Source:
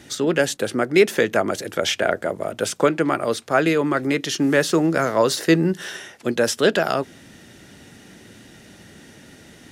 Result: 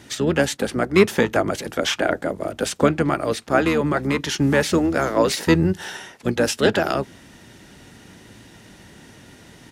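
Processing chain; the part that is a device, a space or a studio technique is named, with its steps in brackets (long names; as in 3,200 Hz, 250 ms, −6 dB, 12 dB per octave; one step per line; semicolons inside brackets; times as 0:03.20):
octave pedal (pitch-shifted copies added −12 semitones −6 dB)
level −1 dB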